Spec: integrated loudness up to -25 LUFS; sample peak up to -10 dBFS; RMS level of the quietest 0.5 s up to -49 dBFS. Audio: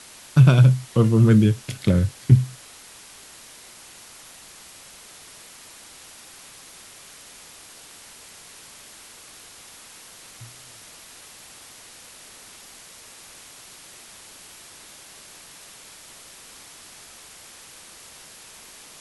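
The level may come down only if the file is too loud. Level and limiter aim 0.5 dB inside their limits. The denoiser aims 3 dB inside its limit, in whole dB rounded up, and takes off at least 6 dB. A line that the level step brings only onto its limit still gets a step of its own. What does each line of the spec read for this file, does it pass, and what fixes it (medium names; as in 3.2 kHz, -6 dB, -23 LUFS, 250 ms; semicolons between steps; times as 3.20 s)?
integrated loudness -18.0 LUFS: fail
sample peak -2.5 dBFS: fail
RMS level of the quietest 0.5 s -46 dBFS: fail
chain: trim -7.5 dB; peak limiter -10.5 dBFS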